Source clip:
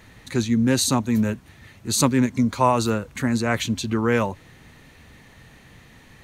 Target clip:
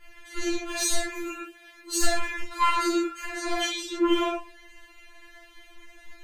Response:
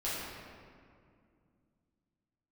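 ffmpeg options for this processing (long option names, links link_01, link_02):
-filter_complex "[0:a]aeval=exprs='0.224*(abs(mod(val(0)/0.224+3,4)-2)-1)':channel_layout=same[link_01];[1:a]atrim=start_sample=2205,afade=type=out:start_time=0.31:duration=0.01,atrim=end_sample=14112,asetrate=66150,aresample=44100[link_02];[link_01][link_02]afir=irnorm=-1:irlink=0,afftfilt=real='re*4*eq(mod(b,16),0)':imag='im*4*eq(mod(b,16),0)':win_size=2048:overlap=0.75"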